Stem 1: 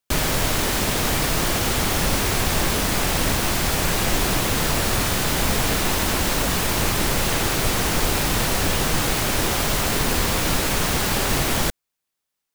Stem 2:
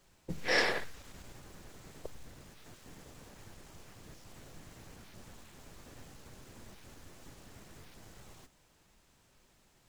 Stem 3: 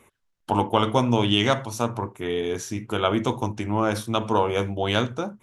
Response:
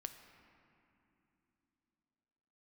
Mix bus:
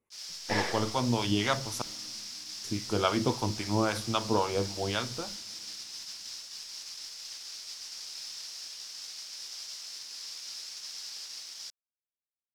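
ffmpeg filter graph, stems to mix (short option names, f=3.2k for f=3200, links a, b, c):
-filter_complex "[0:a]bandpass=f=5.2k:t=q:w=5.2:csg=0,volume=-5.5dB[a];[1:a]volume=-5dB,asplit=2[b][c];[c]volume=-17dB[d];[2:a]dynaudnorm=f=250:g=9:m=11.5dB,acrossover=split=730[e][f];[e]aeval=exprs='val(0)*(1-0.7/2+0.7/2*cos(2*PI*3.7*n/s))':c=same[g];[f]aeval=exprs='val(0)*(1-0.7/2-0.7/2*cos(2*PI*3.7*n/s))':c=same[h];[g][h]amix=inputs=2:normalize=0,volume=-8.5dB,asplit=3[i][j][k];[i]atrim=end=1.82,asetpts=PTS-STARTPTS,afade=t=out:st=1.816:d=0.004:c=hsin[l];[j]atrim=start=1.82:end=2.64,asetpts=PTS-STARTPTS,volume=0[m];[k]atrim=start=2.64,asetpts=PTS-STARTPTS,afade=t=in:d=0.004:c=hsin[n];[l][m][n]concat=n=3:v=0:a=1,asplit=3[o][p][q];[p]volume=-8.5dB[r];[q]apad=whole_len=435973[s];[b][s]sidechaingate=range=-33dB:threshold=-49dB:ratio=16:detection=peak[t];[3:a]atrim=start_sample=2205[u];[d][r]amix=inputs=2:normalize=0[v];[v][u]afir=irnorm=-1:irlink=0[w];[a][t][o][w]amix=inputs=4:normalize=0,agate=range=-17dB:threshold=-41dB:ratio=16:detection=peak"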